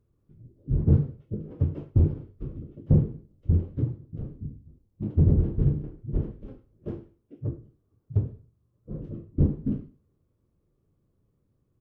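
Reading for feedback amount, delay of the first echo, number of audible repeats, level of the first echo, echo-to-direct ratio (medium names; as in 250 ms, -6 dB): 29%, 101 ms, 2, -21.0 dB, -20.5 dB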